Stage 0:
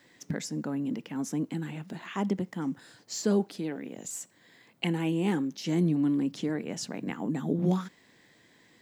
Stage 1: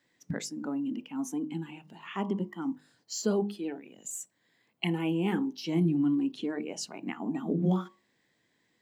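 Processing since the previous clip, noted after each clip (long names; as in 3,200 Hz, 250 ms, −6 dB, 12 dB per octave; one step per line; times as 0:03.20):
hum removal 50.95 Hz, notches 23
noise reduction from a noise print of the clip's start 12 dB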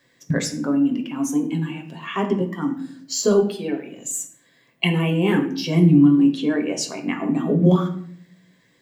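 convolution reverb RT60 0.60 s, pre-delay 7 ms, DRR 3.5 dB
level +9 dB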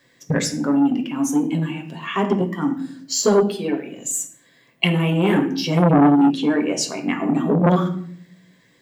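saturating transformer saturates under 690 Hz
level +3 dB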